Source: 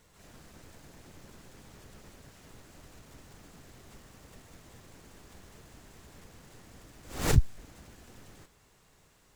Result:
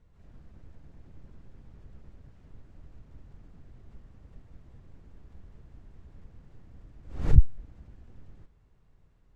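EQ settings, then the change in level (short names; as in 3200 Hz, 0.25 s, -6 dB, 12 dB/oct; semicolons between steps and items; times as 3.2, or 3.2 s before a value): RIAA curve playback; high shelf 10000 Hz -10 dB; -10.0 dB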